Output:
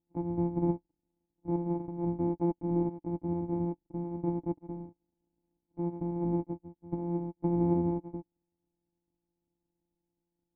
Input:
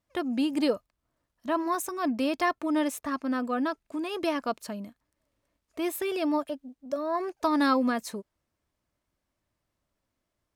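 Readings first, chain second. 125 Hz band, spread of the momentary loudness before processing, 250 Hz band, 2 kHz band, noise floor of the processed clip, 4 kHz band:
no reading, 13 LU, -3.0 dB, under -30 dB, under -85 dBFS, under -40 dB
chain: sorted samples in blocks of 256 samples; cascade formant filter u; trim +7 dB

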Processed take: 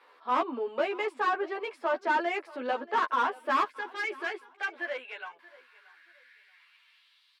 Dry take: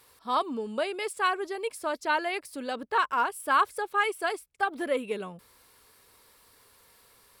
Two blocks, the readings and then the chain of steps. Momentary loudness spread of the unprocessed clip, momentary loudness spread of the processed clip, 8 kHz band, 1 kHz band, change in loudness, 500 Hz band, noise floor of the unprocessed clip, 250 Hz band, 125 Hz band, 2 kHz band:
9 LU, 9 LU, under -10 dB, -1.5 dB, -1.5 dB, -1.0 dB, -60 dBFS, -2.5 dB, no reading, -1.5 dB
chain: one-sided wavefolder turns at -20 dBFS; three-band isolator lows -15 dB, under 410 Hz, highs -19 dB, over 3.8 kHz; overdrive pedal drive 18 dB, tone 1.5 kHz, clips at -14.5 dBFS; time-frequency box 3.64–6.55 s, 380–1400 Hz -12 dB; high-pass sweep 260 Hz -> 3.9 kHz, 3.71–7.33 s; doubling 12 ms -2 dB; on a send: feedback delay 630 ms, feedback 29%, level -21 dB; on the sum: trim -6 dB

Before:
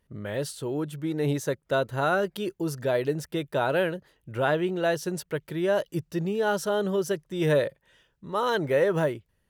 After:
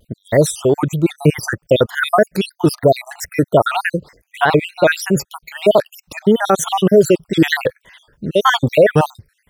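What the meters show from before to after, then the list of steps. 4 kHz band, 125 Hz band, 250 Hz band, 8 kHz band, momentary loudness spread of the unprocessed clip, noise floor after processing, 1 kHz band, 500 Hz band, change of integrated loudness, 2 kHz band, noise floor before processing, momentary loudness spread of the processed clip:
+13.0 dB, +11.5 dB, +12.0 dB, +14.0 dB, 8 LU, -68 dBFS, +12.0 dB, +11.0 dB, +11.5 dB, +11.5 dB, -72 dBFS, 9 LU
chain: random holes in the spectrogram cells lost 65%; loudness maximiser +19.5 dB; vibrato with a chosen wave square 3.2 Hz, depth 100 cents; trim -1 dB

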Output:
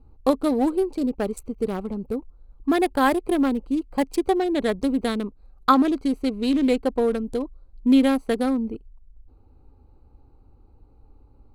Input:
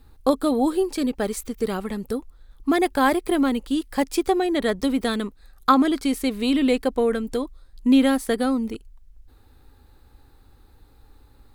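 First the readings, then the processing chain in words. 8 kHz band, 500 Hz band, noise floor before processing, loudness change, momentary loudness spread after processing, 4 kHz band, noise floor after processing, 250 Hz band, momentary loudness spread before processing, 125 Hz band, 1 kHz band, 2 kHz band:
-6.5 dB, -0.5 dB, -54 dBFS, -0.5 dB, 11 LU, -4.0 dB, -54 dBFS, 0.0 dB, 11 LU, no reading, -0.5 dB, -2.5 dB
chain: local Wiener filter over 25 samples

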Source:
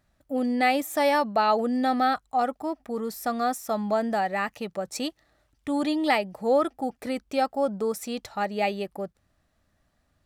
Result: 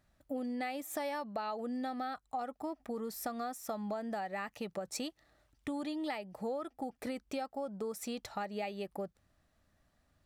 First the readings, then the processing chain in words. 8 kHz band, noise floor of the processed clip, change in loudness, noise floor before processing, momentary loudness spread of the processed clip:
-7.0 dB, -75 dBFS, -13.0 dB, -71 dBFS, 4 LU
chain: compression 10:1, threshold -32 dBFS, peak gain reduction 15 dB; trim -3 dB

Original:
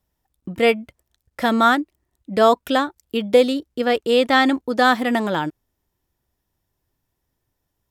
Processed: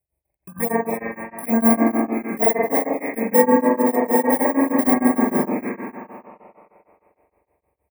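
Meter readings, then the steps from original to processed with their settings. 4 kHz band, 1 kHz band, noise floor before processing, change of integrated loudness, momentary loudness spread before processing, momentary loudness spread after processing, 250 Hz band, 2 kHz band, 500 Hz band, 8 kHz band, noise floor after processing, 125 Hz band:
under -40 dB, -3.0 dB, -77 dBFS, 0.0 dB, 11 LU, 13 LU, +3.5 dB, -6.0 dB, -1.0 dB, +10.0 dB, -79 dBFS, +1.0 dB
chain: bit-reversed sample order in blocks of 32 samples; high-pass 73 Hz; doubling 41 ms -13.5 dB; spring tank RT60 2.8 s, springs 44 ms, chirp 65 ms, DRR -6.5 dB; touch-sensitive phaser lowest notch 230 Hz, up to 3 kHz, full sweep at -10.5 dBFS; brick-wall FIR band-stop 2.6–8 kHz; on a send: frequency-shifting echo 258 ms, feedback 33%, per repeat +110 Hz, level -13 dB; on the sum: tremolo of two beating tones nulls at 6.5 Hz; trim -2 dB

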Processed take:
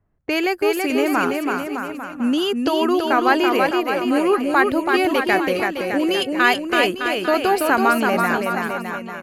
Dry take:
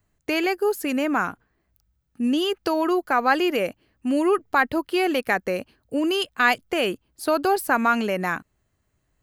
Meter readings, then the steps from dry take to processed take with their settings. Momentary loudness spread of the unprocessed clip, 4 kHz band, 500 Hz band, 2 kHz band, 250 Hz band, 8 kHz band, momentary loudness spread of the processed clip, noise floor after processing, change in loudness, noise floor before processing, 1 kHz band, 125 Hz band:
8 LU, +4.5 dB, +4.5 dB, +4.5 dB, +4.5 dB, +4.0 dB, 7 LU, -33 dBFS, +4.0 dB, -72 dBFS, +4.5 dB, +4.5 dB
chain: level-controlled noise filter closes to 1.3 kHz, open at -21 dBFS; bouncing-ball echo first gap 330 ms, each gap 0.85×, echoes 5; trim +2.5 dB

